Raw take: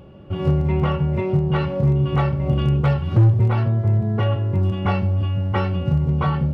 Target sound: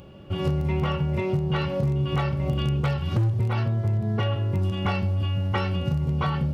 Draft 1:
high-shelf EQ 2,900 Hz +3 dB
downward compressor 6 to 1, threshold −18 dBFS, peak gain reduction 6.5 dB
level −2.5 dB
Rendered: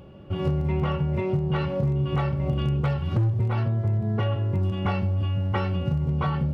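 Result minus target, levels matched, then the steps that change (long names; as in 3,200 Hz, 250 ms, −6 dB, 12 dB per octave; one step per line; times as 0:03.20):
8,000 Hz band −8.5 dB
change: high-shelf EQ 2,900 Hz +13 dB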